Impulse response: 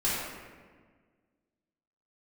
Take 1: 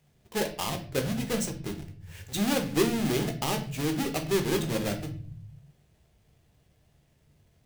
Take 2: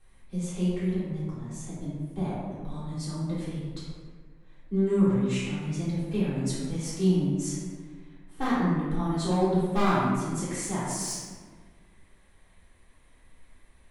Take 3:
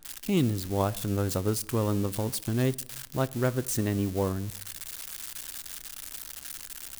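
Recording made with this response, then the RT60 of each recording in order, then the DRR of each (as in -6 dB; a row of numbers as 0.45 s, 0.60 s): 2; 0.45 s, 1.6 s, 0.95 s; 4.5 dB, -10.0 dB, 15.5 dB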